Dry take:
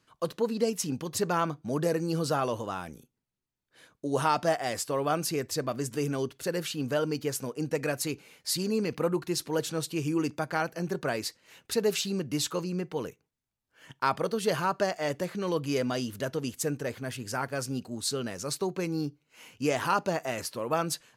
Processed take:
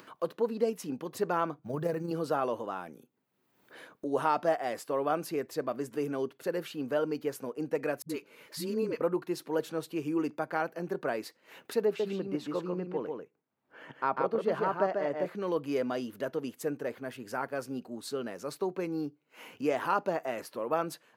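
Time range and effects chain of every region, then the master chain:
1.59–2.11 s: block-companded coder 7-bit + resonant low shelf 170 Hz +10 dB, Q 1.5 + AM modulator 26 Hz, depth 25%
8.02–9.01 s: Butterworth band-stop 760 Hz, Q 4.7 + upward compressor, threshold -45 dBFS + phase dispersion highs, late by 75 ms, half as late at 320 Hz
11.85–15.26 s: low-pass 1.9 kHz 6 dB/octave + delay 144 ms -4 dB
whole clip: high-pass 260 Hz 12 dB/octave; peaking EQ 6.9 kHz -14.5 dB 2.4 oct; upward compressor, threshold -39 dBFS

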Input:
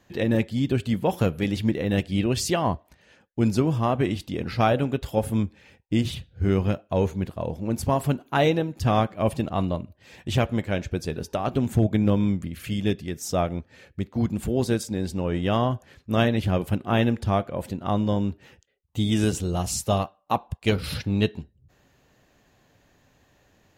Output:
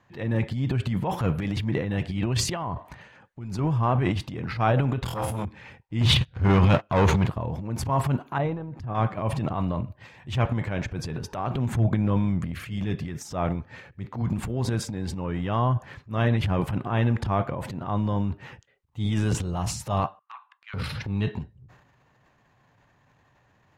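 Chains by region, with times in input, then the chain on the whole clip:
2.36–3.59 s: band-stop 5.3 kHz, Q 17 + compressor with a negative ratio -29 dBFS
5.04–5.45 s: treble shelf 3.8 kHz +10.5 dB + flutter echo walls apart 4.2 m, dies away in 0.4 s + transformer saturation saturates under 980 Hz
6.01–7.27 s: peaking EQ 3.7 kHz +6.5 dB 1.6 oct + waveshaping leveller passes 3
8.38–8.95 s: low-pass 1 kHz 6 dB/octave + compression 5:1, threshold -29 dBFS
20.19–20.74 s: steep high-pass 1.3 kHz + tape spacing loss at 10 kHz 32 dB
whole clip: ten-band graphic EQ 125 Hz +11 dB, 1 kHz +11 dB, 2 kHz +5 dB; transient shaper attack -7 dB, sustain +10 dB; treble shelf 9.6 kHz -10.5 dB; trim -8 dB

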